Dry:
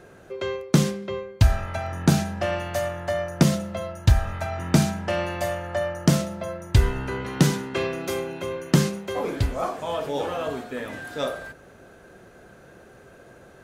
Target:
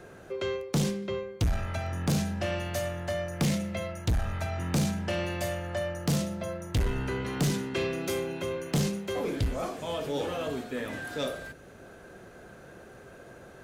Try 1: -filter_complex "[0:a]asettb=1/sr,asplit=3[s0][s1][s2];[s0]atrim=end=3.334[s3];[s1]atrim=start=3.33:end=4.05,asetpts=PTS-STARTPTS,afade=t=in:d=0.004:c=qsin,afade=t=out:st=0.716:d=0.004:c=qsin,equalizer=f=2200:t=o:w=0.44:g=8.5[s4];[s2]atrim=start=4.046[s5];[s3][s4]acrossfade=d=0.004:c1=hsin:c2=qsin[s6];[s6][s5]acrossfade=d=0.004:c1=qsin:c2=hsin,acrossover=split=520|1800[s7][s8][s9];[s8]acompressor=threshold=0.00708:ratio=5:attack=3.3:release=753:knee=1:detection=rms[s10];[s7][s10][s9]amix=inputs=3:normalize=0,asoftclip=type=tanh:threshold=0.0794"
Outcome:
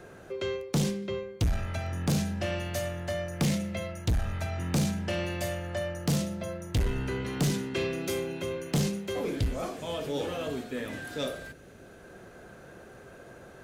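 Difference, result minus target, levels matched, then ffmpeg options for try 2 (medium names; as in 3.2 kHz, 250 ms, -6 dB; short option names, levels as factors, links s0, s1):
compression: peak gain reduction +5 dB
-filter_complex "[0:a]asettb=1/sr,asplit=3[s0][s1][s2];[s0]atrim=end=3.334[s3];[s1]atrim=start=3.33:end=4.05,asetpts=PTS-STARTPTS,afade=t=in:d=0.004:c=qsin,afade=t=out:st=0.716:d=0.004:c=qsin,equalizer=f=2200:t=o:w=0.44:g=8.5[s4];[s2]atrim=start=4.046[s5];[s3][s4]acrossfade=d=0.004:c1=hsin:c2=qsin[s6];[s6][s5]acrossfade=d=0.004:c1=qsin:c2=hsin,acrossover=split=520|1800[s7][s8][s9];[s8]acompressor=threshold=0.015:ratio=5:attack=3.3:release=753:knee=1:detection=rms[s10];[s7][s10][s9]amix=inputs=3:normalize=0,asoftclip=type=tanh:threshold=0.0794"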